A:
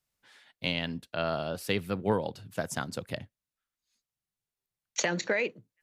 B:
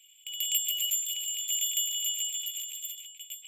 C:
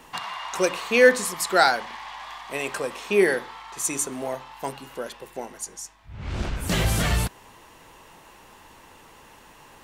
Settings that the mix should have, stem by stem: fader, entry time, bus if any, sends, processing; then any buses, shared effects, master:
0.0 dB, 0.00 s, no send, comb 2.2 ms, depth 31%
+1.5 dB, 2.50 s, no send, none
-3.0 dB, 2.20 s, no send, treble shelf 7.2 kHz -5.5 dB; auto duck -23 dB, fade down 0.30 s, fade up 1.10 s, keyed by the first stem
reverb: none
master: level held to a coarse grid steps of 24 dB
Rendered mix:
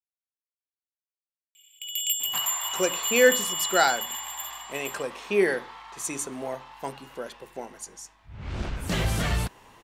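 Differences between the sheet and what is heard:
stem A: muted; stem B: entry 2.50 s -> 1.55 s; master: missing level held to a coarse grid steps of 24 dB

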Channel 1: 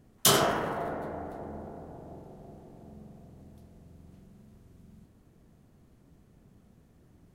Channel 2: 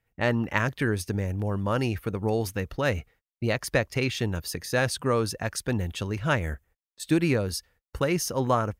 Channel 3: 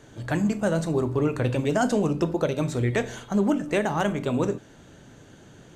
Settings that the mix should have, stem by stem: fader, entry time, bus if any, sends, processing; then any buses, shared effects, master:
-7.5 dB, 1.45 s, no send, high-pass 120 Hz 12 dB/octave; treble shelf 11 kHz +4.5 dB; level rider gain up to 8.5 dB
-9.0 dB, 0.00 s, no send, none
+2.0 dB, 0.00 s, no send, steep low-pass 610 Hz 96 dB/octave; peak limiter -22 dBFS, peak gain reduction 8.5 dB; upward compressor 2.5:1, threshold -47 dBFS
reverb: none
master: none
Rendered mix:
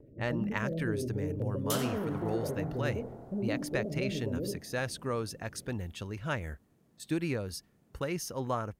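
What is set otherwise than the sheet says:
stem 1 -7.5 dB -> -14.5 dB; stem 3 +2.0 dB -> -6.0 dB

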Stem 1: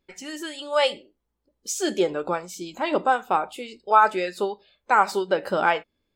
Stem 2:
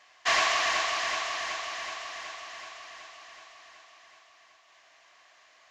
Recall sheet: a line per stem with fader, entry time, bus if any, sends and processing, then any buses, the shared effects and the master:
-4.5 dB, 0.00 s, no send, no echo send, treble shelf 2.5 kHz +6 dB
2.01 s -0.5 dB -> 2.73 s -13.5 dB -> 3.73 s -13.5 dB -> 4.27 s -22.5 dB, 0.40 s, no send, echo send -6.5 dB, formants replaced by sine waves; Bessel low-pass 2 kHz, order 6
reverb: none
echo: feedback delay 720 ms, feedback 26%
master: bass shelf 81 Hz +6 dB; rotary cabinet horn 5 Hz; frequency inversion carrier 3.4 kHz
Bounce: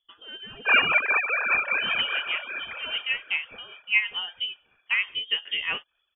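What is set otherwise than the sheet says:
stem 1: missing treble shelf 2.5 kHz +6 dB; stem 2 -0.5 dB -> +9.0 dB

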